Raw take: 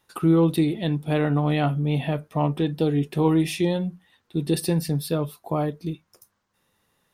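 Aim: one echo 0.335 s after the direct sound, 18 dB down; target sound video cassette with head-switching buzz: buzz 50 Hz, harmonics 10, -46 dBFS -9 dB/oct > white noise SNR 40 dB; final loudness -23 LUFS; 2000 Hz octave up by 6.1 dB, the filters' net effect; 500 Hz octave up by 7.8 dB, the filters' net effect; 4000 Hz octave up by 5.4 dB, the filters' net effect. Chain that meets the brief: bell 500 Hz +9 dB; bell 2000 Hz +6 dB; bell 4000 Hz +4.5 dB; echo 0.335 s -18 dB; buzz 50 Hz, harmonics 10, -46 dBFS -9 dB/oct; white noise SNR 40 dB; gain -3.5 dB

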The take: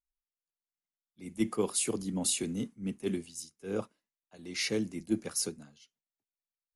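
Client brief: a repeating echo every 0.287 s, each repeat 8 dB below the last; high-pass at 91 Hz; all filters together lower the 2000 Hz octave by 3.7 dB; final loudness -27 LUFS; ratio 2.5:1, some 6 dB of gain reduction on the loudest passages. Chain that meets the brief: HPF 91 Hz; bell 2000 Hz -4.5 dB; compressor 2.5:1, threshold -33 dBFS; feedback echo 0.287 s, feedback 40%, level -8 dB; gain +10 dB

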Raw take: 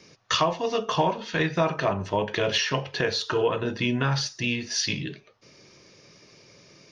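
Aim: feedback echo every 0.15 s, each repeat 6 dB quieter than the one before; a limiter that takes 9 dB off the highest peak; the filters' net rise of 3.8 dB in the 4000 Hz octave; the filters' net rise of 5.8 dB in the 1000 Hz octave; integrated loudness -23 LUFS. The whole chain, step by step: bell 1000 Hz +6.5 dB; bell 4000 Hz +4.5 dB; limiter -16 dBFS; feedback echo 0.15 s, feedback 50%, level -6 dB; gain +2 dB

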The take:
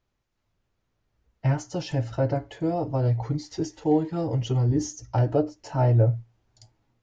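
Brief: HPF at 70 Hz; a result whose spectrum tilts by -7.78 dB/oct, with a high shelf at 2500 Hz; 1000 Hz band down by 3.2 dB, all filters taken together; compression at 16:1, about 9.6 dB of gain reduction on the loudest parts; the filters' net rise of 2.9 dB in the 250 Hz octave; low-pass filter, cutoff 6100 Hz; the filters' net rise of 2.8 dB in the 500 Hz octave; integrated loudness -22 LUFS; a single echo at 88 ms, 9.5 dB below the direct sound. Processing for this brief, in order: HPF 70 Hz; LPF 6100 Hz; bell 250 Hz +3 dB; bell 500 Hz +4.5 dB; bell 1000 Hz -8.5 dB; high shelf 2500 Hz +4 dB; compressor 16:1, threshold -23 dBFS; echo 88 ms -9.5 dB; gain +7.5 dB

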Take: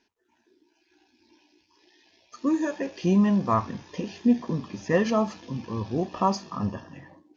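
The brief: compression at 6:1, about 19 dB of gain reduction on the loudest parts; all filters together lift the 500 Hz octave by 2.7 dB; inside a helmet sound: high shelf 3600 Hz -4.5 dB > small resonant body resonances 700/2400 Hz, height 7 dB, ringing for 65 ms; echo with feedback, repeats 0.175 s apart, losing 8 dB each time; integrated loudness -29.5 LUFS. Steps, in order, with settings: bell 500 Hz +3.5 dB; compressor 6:1, threshold -36 dBFS; high shelf 3600 Hz -4.5 dB; feedback echo 0.175 s, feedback 40%, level -8 dB; small resonant body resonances 700/2400 Hz, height 7 dB, ringing for 65 ms; gain +10 dB

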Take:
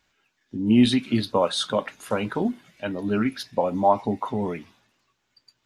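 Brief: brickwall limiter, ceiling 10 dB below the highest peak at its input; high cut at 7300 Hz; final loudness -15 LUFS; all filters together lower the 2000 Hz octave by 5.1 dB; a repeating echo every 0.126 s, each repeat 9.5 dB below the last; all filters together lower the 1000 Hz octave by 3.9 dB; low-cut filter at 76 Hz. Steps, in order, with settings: HPF 76 Hz; LPF 7300 Hz; bell 1000 Hz -4 dB; bell 2000 Hz -5.5 dB; limiter -17.5 dBFS; feedback echo 0.126 s, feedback 33%, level -9.5 dB; gain +13.5 dB

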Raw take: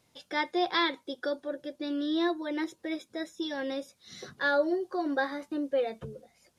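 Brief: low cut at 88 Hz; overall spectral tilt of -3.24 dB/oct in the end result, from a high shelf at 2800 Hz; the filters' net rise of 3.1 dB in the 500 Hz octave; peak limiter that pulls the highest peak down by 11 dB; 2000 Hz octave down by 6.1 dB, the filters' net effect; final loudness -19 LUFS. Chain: HPF 88 Hz; bell 500 Hz +4.5 dB; bell 2000 Hz -6 dB; high shelf 2800 Hz -6 dB; gain +14.5 dB; limiter -9.5 dBFS

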